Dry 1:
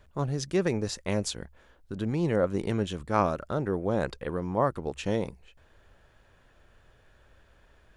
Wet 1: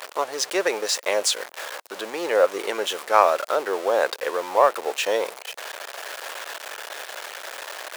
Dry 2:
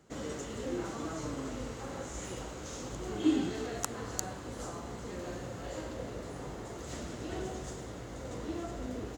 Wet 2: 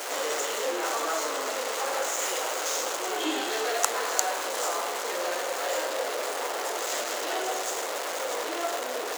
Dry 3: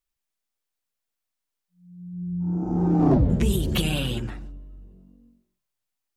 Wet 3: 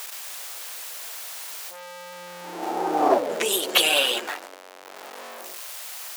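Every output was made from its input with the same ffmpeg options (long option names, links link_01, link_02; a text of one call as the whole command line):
ffmpeg -i in.wav -filter_complex "[0:a]aeval=exprs='val(0)+0.5*0.0158*sgn(val(0))':channel_layout=same,highpass=frequency=500:width=0.5412,highpass=frequency=500:width=1.3066,asplit=2[link_01][link_02];[link_02]asoftclip=type=tanh:threshold=-20dB,volume=-11dB[link_03];[link_01][link_03]amix=inputs=2:normalize=0,volume=8dB" out.wav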